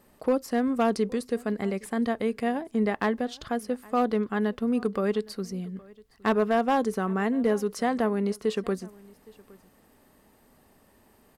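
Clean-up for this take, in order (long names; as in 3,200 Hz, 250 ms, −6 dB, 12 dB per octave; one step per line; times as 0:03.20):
clipped peaks rebuilt −16 dBFS
echo removal 815 ms −24 dB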